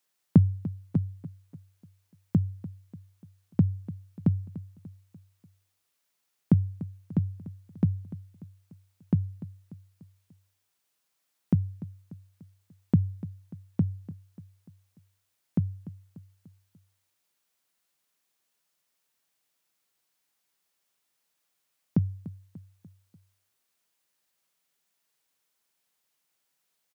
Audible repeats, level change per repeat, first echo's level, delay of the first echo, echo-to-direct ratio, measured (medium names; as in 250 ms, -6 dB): 4, -6.0 dB, -16.0 dB, 294 ms, -15.0 dB